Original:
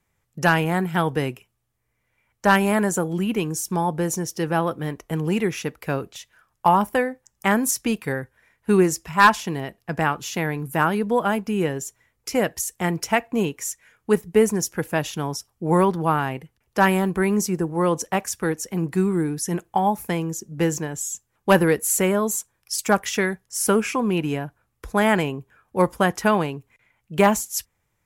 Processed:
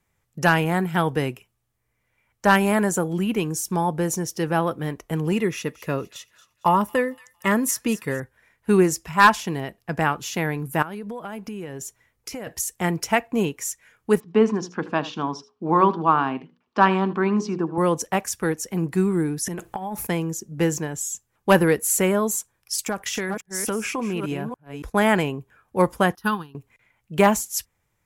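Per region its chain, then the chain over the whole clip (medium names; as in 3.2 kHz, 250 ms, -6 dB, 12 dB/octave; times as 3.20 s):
5.32–8.20 s: comb of notches 780 Hz + feedback echo behind a high-pass 228 ms, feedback 39%, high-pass 2.5 kHz, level -16 dB
10.82–12.47 s: band-stop 7.4 kHz, Q 26 + compression 16:1, threshold -29 dBFS
14.20–17.78 s: cabinet simulation 200–4600 Hz, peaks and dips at 250 Hz +9 dB, 530 Hz -5 dB, 1.1 kHz +8 dB, 2 kHz -7 dB + hum notches 60/120/180/240/300/360/420/480/540 Hz + delay 79 ms -17.5 dB
19.46–20.07 s: transient shaper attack +7 dB, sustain +12 dB + compression 10:1, threshold -26 dBFS
22.85–24.95 s: chunks repeated in reverse 282 ms, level -9.5 dB + gate -38 dBFS, range -14 dB + compression 4:1, threshold -23 dBFS
26.15–26.55 s: treble shelf 6.4 kHz +9 dB + static phaser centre 2.2 kHz, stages 6 + upward expansion 2.5:1, over -30 dBFS
whole clip: none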